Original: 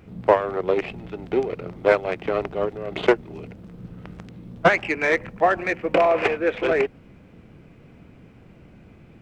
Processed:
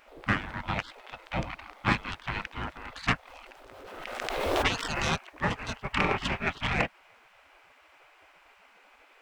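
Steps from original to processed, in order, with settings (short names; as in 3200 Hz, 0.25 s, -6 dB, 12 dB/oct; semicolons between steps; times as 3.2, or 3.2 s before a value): spectral gate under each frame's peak -20 dB weak; low shelf 310 Hz +7.5 dB; 3.27–5.14 backwards sustainer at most 28 dB/s; gain +3.5 dB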